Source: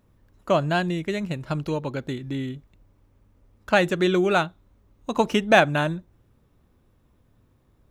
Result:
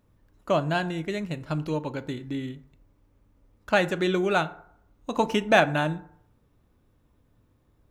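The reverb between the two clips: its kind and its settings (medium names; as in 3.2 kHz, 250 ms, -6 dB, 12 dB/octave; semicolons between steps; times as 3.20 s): FDN reverb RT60 0.67 s, low-frequency decay 0.8×, high-frequency decay 0.45×, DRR 11.5 dB; trim -3 dB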